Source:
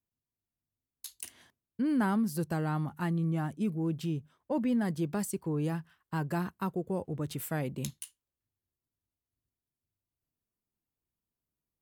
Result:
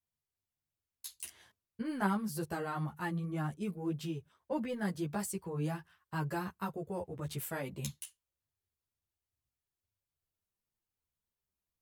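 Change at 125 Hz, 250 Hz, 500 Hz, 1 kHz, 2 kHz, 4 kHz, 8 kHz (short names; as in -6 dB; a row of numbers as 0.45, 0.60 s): -5.5, -6.5, -3.5, -1.5, -1.0, -1.0, -1.5 dB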